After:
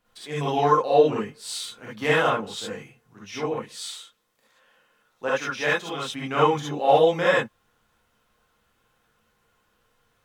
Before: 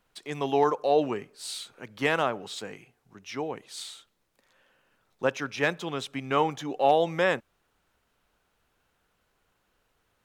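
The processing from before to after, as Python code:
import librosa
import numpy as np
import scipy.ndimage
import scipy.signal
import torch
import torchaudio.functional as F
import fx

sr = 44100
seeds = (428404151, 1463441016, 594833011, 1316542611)

y = fx.low_shelf(x, sr, hz=240.0, db=-10.5, at=(3.71, 6.04))
y = fx.rev_gated(y, sr, seeds[0], gate_ms=90, shape='rising', drr_db=-7.0)
y = y * librosa.db_to_amplitude(-3.0)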